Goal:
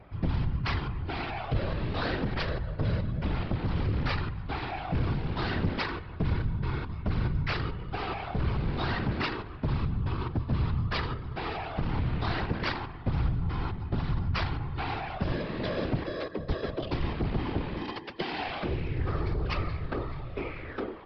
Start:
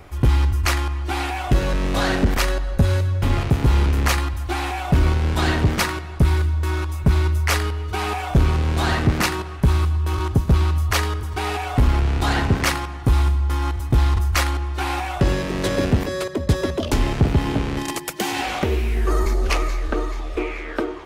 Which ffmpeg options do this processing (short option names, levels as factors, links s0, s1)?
-af "adynamicsmooth=sensitivity=6.5:basefreq=3300,aresample=11025,volume=5.96,asoftclip=hard,volume=0.168,aresample=44100,afftfilt=real='hypot(re,im)*cos(2*PI*random(0))':imag='hypot(re,im)*sin(2*PI*random(1))':win_size=512:overlap=0.75,volume=0.708"